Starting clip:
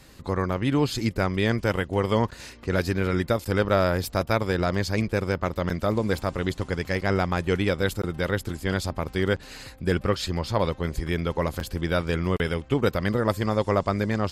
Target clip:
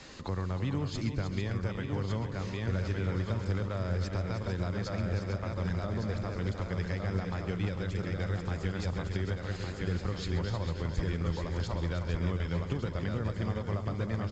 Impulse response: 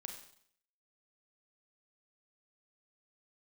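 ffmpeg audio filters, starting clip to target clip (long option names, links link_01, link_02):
-filter_complex "[0:a]lowshelf=frequency=170:gain=-8.5,asplit=2[link_01][link_02];[link_02]aecho=0:1:1158|2316|3474|4632:0.501|0.165|0.0546|0.018[link_03];[link_01][link_03]amix=inputs=2:normalize=0,alimiter=limit=-15.5dB:level=0:latency=1:release=182,acrossover=split=150[link_04][link_05];[link_05]acompressor=threshold=-43dB:ratio=5[link_06];[link_04][link_06]amix=inputs=2:normalize=0,asplit=2[link_07][link_08];[link_08]aecho=0:1:132|312|451:0.188|0.376|0.335[link_09];[link_07][link_09]amix=inputs=2:normalize=0,volume=4dB" -ar 16000 -c:a pcm_mulaw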